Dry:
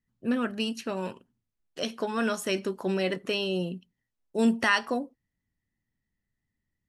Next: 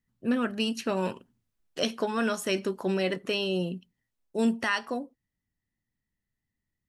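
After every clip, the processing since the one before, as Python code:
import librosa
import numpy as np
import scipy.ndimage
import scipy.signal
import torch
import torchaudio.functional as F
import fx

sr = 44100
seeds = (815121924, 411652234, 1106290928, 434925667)

y = fx.rider(x, sr, range_db=10, speed_s=0.5)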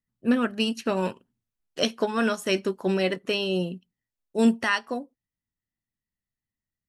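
y = fx.upward_expand(x, sr, threshold_db=-47.0, expansion=1.5)
y = y * librosa.db_to_amplitude(6.0)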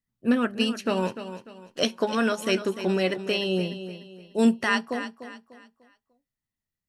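y = fx.echo_feedback(x, sr, ms=297, feedback_pct=35, wet_db=-11.5)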